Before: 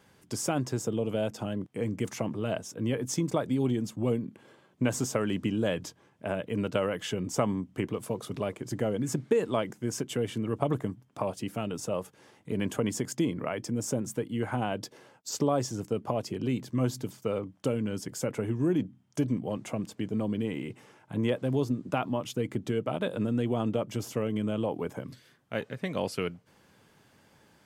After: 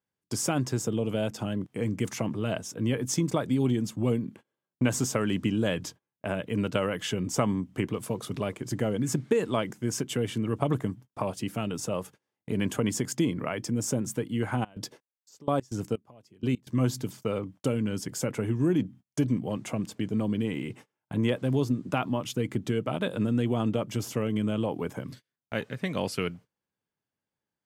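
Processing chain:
noise gate −48 dBFS, range −33 dB
dynamic equaliser 580 Hz, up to −4 dB, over −43 dBFS, Q 0.83
0:14.60–0:16.76: gate pattern "..x.xx.." 126 BPM −24 dB
level +3.5 dB

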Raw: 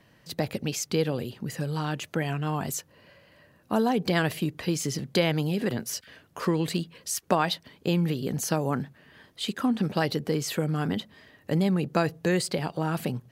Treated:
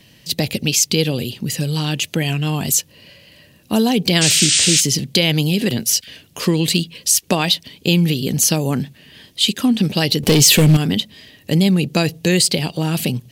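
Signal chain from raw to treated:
0:04.21–0:04.81: sound drawn into the spectrogram noise 1,300–9,100 Hz −31 dBFS
0:10.23–0:10.77: leveller curve on the samples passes 3
drawn EQ curve 230 Hz 0 dB, 1,400 Hz −10 dB, 2,800 Hz +7 dB
boost into a limiter +12 dB
level −2 dB

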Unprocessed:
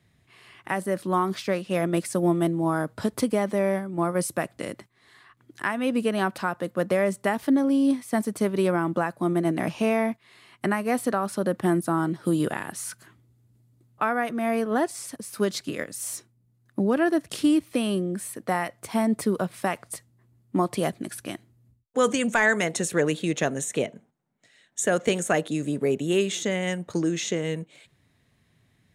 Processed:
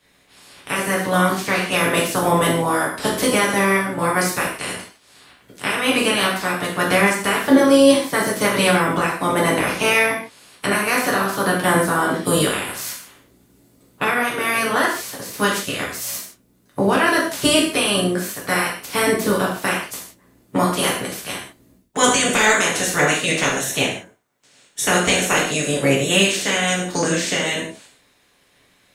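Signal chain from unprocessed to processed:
ceiling on every frequency bin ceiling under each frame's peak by 22 dB
reverb whose tail is shaped and stops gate 190 ms falling, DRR −4 dB
level +1 dB

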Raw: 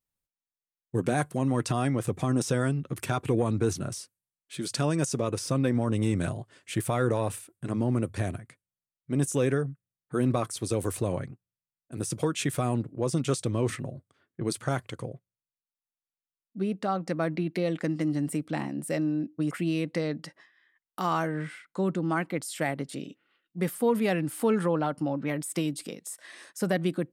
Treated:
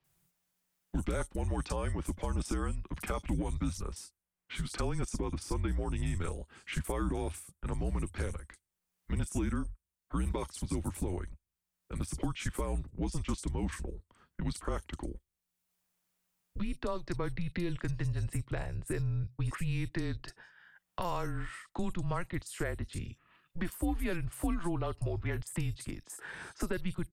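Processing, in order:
multiband delay without the direct sound lows, highs 40 ms, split 4,400 Hz
frequency shifter −180 Hz
multiband upward and downward compressor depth 70%
level −6 dB

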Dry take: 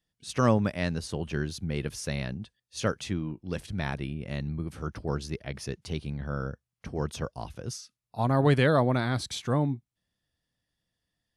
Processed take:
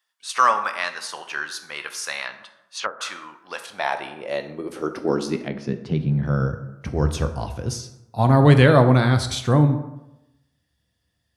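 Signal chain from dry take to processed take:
high-pass filter sweep 1,100 Hz → 72 Hz, 0:03.31–0:07.00
dense smooth reverb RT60 0.9 s, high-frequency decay 0.55×, DRR 7 dB
0:02.24–0:03.01: treble cut that deepens with the level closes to 580 Hz, closed at −26 dBFS
0:05.48–0:06.23: head-to-tape spacing loss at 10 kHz 24 dB
level +7 dB

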